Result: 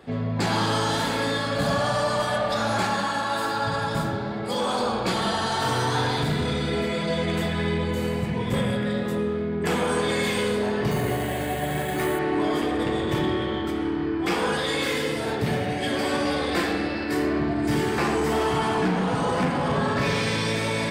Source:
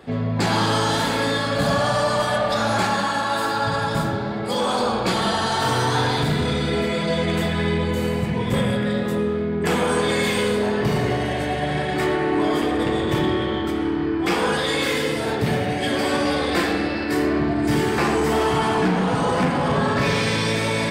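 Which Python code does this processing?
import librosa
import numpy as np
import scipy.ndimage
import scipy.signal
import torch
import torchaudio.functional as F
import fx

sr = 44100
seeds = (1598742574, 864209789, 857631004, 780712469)

y = fx.resample_bad(x, sr, factor=4, down='filtered', up='hold', at=(10.91, 12.19))
y = y * librosa.db_to_amplitude(-3.5)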